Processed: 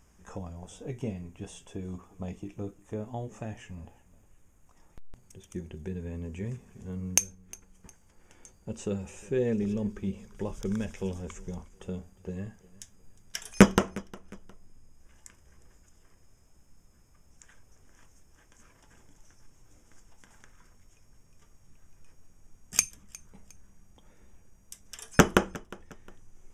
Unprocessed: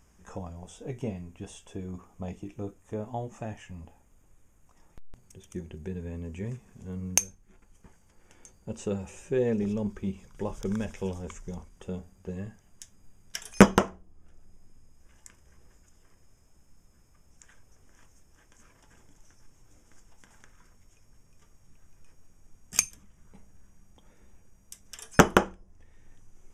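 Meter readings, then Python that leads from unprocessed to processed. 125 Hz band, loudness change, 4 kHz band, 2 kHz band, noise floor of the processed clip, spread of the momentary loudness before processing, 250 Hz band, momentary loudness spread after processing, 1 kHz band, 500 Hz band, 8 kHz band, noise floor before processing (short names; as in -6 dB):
0.0 dB, -1.0 dB, 0.0 dB, -1.5 dB, -61 dBFS, 20 LU, -0.5 dB, 24 LU, -4.0 dB, -2.0 dB, 0.0 dB, -62 dBFS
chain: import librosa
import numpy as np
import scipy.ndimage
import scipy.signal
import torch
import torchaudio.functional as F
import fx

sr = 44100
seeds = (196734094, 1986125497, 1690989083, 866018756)

y = fx.dynamic_eq(x, sr, hz=840.0, q=1.0, threshold_db=-44.0, ratio=4.0, max_db=-5)
y = fx.echo_feedback(y, sr, ms=358, feedback_pct=34, wet_db=-22.0)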